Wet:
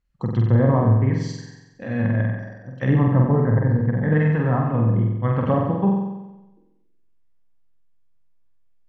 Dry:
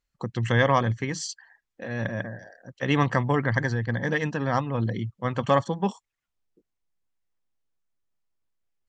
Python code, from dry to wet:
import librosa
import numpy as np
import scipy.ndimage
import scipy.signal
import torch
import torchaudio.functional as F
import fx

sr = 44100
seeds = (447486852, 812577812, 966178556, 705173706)

y = fx.bass_treble(x, sr, bass_db=9, treble_db=-9)
y = fx.env_lowpass_down(y, sr, base_hz=760.0, full_db=-15.5)
y = fx.room_flutter(y, sr, wall_m=7.9, rt60_s=1.0)